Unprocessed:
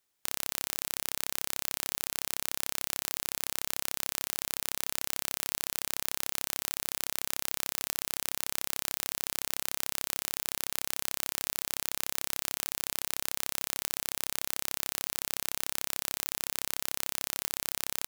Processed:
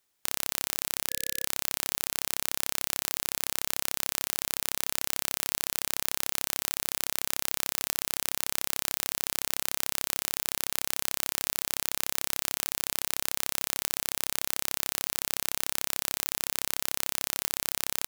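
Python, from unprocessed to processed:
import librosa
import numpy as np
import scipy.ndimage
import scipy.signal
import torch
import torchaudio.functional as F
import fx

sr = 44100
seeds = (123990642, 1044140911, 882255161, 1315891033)

y = fx.spec_box(x, sr, start_s=1.1, length_s=0.35, low_hz=500.0, high_hz=1700.0, gain_db=-29)
y = y * librosa.db_to_amplitude(3.0)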